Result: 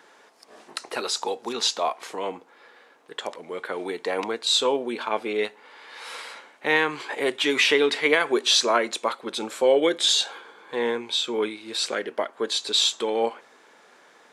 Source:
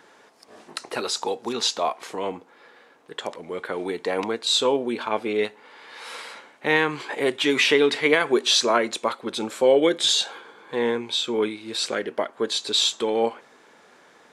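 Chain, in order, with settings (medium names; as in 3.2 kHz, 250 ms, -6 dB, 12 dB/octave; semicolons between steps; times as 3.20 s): high-pass 330 Hz 6 dB/octave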